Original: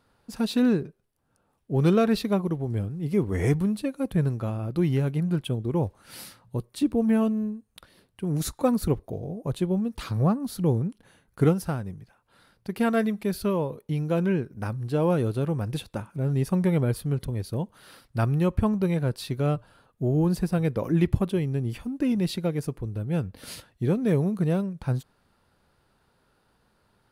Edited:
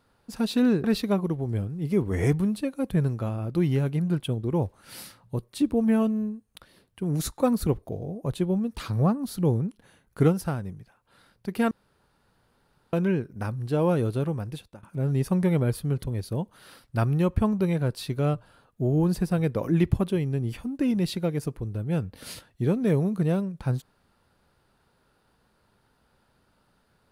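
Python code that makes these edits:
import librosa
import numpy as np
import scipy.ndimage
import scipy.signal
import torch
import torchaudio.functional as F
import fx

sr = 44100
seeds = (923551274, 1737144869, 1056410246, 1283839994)

y = fx.edit(x, sr, fx.cut(start_s=0.84, length_s=1.21),
    fx.room_tone_fill(start_s=12.92, length_s=1.22),
    fx.fade_out_to(start_s=15.41, length_s=0.63, floor_db=-20.5), tone=tone)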